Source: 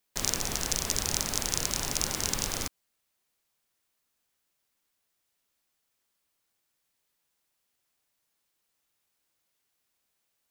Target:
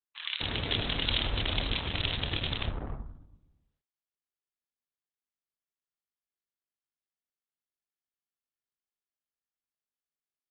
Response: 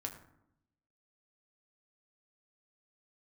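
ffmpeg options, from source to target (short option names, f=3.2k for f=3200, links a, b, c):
-filter_complex "[0:a]highpass=51,asubboost=boost=3:cutoff=200,asetrate=24046,aresample=44100,atempo=1.83401,acrusher=bits=6:mix=0:aa=0.5,acrossover=split=1300[a][b];[a]adelay=250[c];[c][b]amix=inputs=2:normalize=0,asplit=2[d][e];[1:a]atrim=start_sample=2205,adelay=26[f];[e][f]afir=irnorm=-1:irlink=0,volume=0dB[g];[d][g]amix=inputs=2:normalize=0,aresample=16000,aresample=44100,volume=1.5dB" -ar 48000 -c:a libopus -b:a 8k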